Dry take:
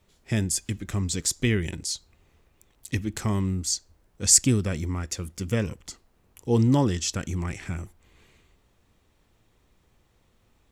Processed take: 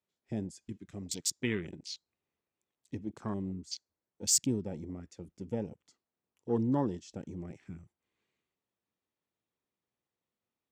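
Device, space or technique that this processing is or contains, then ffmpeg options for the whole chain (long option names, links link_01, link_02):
over-cleaned archive recording: -filter_complex "[0:a]asettb=1/sr,asplit=3[link_01][link_02][link_03];[link_01]atrim=end=0.724[link_04];[link_02]atrim=start=0.72:end=1.31,asetpts=PTS-STARTPTS,afade=type=in:duration=0.004:curve=qsin,afade=type=out:start_time=0.586:duration=0.004:curve=qsin,tiltshelf=frequency=970:gain=-3.5[link_05];[link_03]atrim=start=1.306[link_06];[link_04][link_05]acrossfade=duration=0.004:curve1=hsin:curve2=qsin[link_07];[link_07][link_06]acrossfade=duration=0.004:curve1=qsin:curve2=hsin,highpass=170,lowpass=7600,afwtdn=0.0224,volume=-7dB"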